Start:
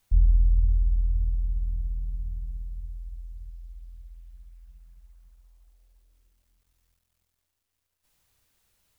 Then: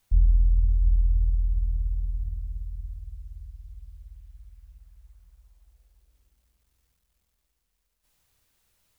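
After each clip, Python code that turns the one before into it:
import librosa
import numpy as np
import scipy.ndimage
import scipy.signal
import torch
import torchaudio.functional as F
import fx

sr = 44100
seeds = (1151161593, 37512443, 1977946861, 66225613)

y = fx.echo_feedback(x, sr, ms=706, feedback_pct=45, wet_db=-10.0)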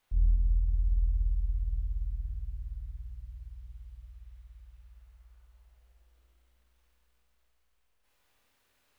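y = fx.bass_treble(x, sr, bass_db=-11, treble_db=-10)
y = fx.rev_schroeder(y, sr, rt60_s=2.7, comb_ms=26, drr_db=-2.5)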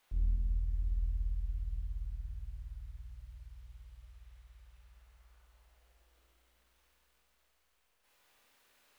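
y = fx.low_shelf(x, sr, hz=190.0, db=-11.0)
y = fx.doppler_dist(y, sr, depth_ms=0.35)
y = y * librosa.db_to_amplitude(4.0)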